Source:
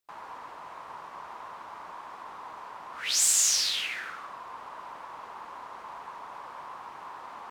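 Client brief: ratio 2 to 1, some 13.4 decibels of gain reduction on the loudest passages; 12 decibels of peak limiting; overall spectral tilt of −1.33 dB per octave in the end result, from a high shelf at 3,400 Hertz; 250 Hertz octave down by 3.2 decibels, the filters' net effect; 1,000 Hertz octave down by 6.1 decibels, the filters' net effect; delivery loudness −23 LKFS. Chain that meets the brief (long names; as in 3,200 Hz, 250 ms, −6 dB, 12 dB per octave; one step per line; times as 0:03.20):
parametric band 250 Hz −4 dB
parametric band 1,000 Hz −7.5 dB
high-shelf EQ 3,400 Hz +6.5 dB
downward compressor 2 to 1, threshold −40 dBFS
level +20.5 dB
brickwall limiter −10.5 dBFS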